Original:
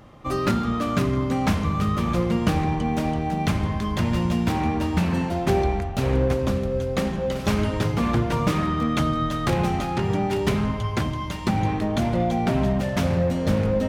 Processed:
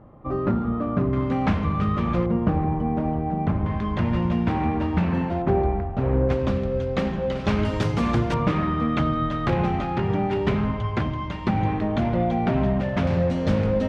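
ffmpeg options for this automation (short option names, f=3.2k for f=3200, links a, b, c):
-af "asetnsamples=n=441:p=0,asendcmd='1.13 lowpass f 2600;2.26 lowpass f 1100;3.66 lowpass f 2300;5.42 lowpass f 1300;6.29 lowpass f 3600;7.65 lowpass f 7200;8.34 lowpass f 2700;13.07 lowpass f 4800',lowpass=1k"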